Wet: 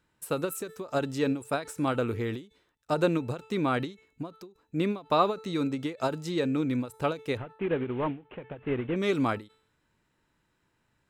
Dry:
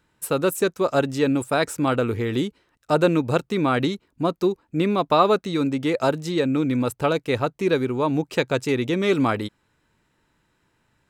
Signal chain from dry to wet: 7.37–8.96 CVSD 16 kbps; de-hum 439.7 Hz, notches 40; ending taper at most 190 dB/s; gain -6 dB

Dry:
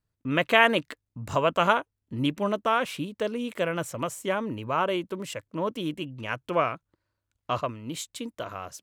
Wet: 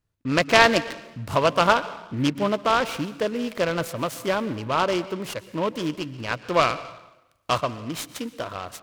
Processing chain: 6.54–7.58 high shelf 2300 Hz +10.5 dB; plate-style reverb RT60 0.96 s, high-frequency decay 0.9×, pre-delay 0.105 s, DRR 15.5 dB; noise-modulated delay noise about 1800 Hz, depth 0.038 ms; gain +3.5 dB

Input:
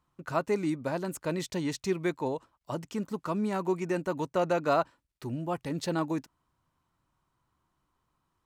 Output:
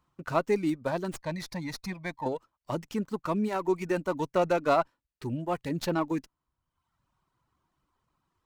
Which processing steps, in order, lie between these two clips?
reverb removal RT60 0.92 s; 1.16–2.26 fixed phaser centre 2000 Hz, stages 8; running maximum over 3 samples; gain +2.5 dB

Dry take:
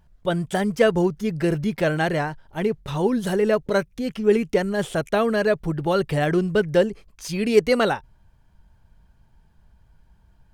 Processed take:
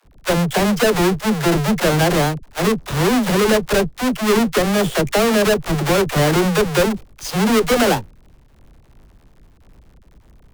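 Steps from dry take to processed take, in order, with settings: half-waves squared off; tube stage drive 19 dB, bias 0.6; dispersion lows, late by 54 ms, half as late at 350 Hz; gain +6.5 dB

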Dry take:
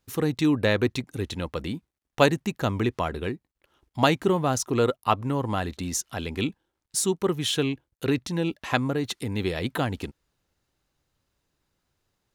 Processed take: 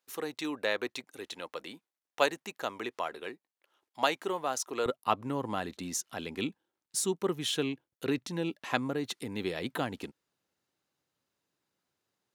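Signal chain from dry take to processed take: HPF 490 Hz 12 dB/oct, from 4.86 s 180 Hz; gain -5.5 dB

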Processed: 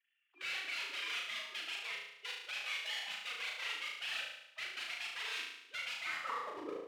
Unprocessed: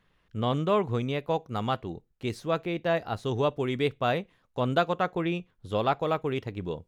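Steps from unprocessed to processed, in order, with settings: sine-wave speech; de-hum 312.5 Hz, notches 17; dynamic EQ 1300 Hz, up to +5 dB, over -42 dBFS, Q 1.5; reverse; compressor 16:1, threshold -34 dBFS, peak gain reduction 19 dB; reverse; sample leveller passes 1; wrapped overs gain 32.5 dB; band-pass sweep 2600 Hz -> 380 Hz, 5.99–6.7; formant-preserving pitch shift +4.5 st; flutter echo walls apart 6.3 m, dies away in 0.81 s; gain +2 dB

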